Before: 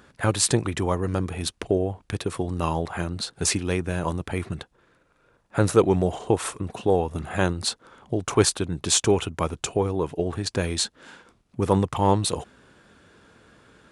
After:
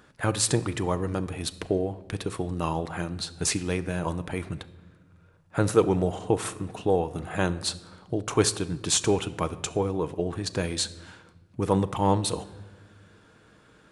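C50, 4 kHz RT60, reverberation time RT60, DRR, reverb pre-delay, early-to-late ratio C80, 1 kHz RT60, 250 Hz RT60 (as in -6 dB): 16.5 dB, 0.90 s, 1.3 s, 11.5 dB, 6 ms, 18.5 dB, 1.1 s, 1.9 s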